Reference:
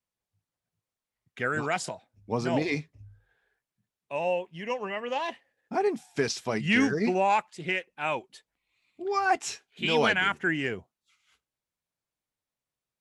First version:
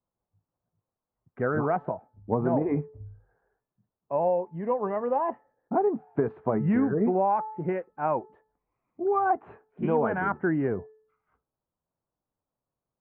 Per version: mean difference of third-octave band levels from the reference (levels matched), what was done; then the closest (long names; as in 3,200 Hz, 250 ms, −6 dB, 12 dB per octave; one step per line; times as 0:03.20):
9.0 dB: inverse Chebyshev low-pass filter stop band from 5,000 Hz, stop band 70 dB
hum removal 434.2 Hz, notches 4
downward compressor, threshold −27 dBFS, peak gain reduction 8 dB
level +6.5 dB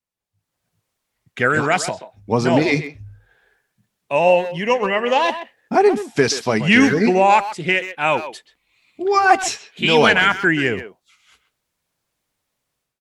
2.5 dB: automatic gain control gain up to 15 dB
far-end echo of a speakerphone 130 ms, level −11 dB
MP3 112 kbit/s 48,000 Hz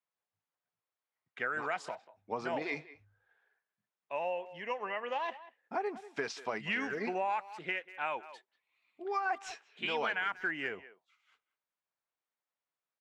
5.0 dB: resonant band-pass 1,200 Hz, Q 0.73
far-end echo of a speakerphone 190 ms, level −19 dB
downward compressor 3 to 1, threshold −32 dBFS, peak gain reduction 9 dB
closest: second